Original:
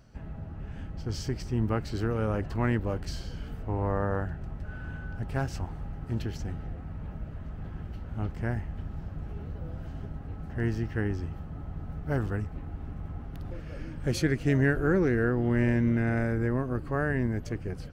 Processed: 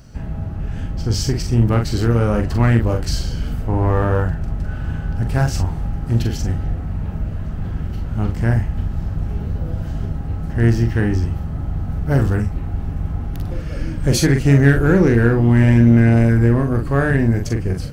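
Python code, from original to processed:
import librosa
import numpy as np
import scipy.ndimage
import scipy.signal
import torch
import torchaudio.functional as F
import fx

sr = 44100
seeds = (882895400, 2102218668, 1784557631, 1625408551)

p1 = fx.bass_treble(x, sr, bass_db=4, treble_db=7)
p2 = np.clip(p1, -10.0 ** (-23.0 / 20.0), 10.0 ** (-23.0 / 20.0))
p3 = p1 + (p2 * librosa.db_to_amplitude(-6.0))
p4 = fx.doubler(p3, sr, ms=43.0, db=-5.5)
y = p4 * librosa.db_to_amplitude(6.0)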